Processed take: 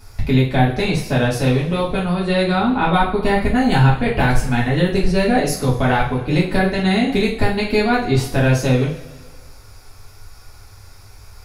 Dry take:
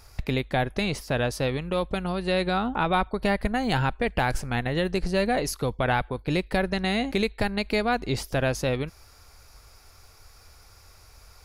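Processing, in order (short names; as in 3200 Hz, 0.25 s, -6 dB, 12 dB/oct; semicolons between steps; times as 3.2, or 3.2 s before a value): low shelf 360 Hz +5 dB; two-slope reverb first 0.38 s, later 1.6 s, from -17 dB, DRR -6.5 dB; gain -1 dB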